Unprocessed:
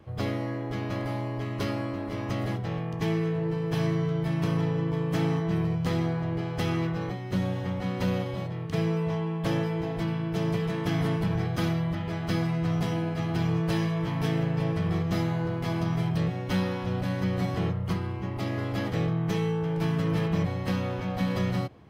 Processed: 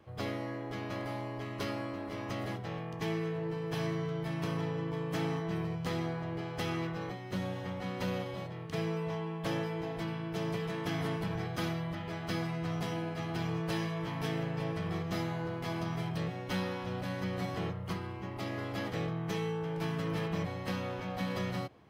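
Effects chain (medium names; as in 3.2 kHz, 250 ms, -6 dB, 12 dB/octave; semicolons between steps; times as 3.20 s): bass shelf 250 Hz -8 dB; trim -3.5 dB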